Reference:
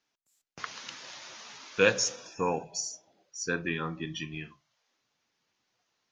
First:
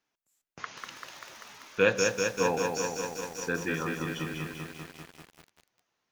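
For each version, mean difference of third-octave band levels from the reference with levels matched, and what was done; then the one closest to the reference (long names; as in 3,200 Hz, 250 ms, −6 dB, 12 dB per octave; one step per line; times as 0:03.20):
9.5 dB: parametric band 4,600 Hz −6 dB 1.3 octaves
feedback echo at a low word length 195 ms, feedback 80%, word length 8 bits, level −4 dB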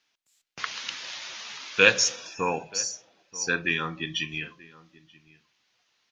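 3.5 dB: parametric band 3,000 Hz +10 dB 2.3 octaves
slap from a distant wall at 160 metres, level −20 dB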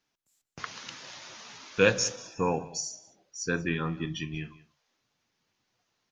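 2.0 dB: low-shelf EQ 200 Hz +8.5 dB
single-tap delay 187 ms −20 dB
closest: third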